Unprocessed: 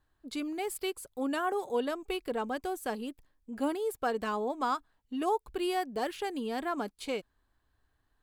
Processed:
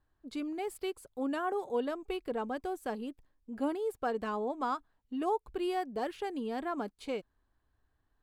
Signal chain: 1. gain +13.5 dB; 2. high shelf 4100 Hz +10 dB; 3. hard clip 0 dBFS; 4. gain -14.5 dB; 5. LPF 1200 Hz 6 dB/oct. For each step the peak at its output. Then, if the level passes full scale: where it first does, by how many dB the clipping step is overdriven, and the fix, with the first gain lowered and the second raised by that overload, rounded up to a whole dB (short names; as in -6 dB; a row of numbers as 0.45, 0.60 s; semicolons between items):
-6.0, -4.5, -4.5, -19.0, -21.0 dBFS; no overload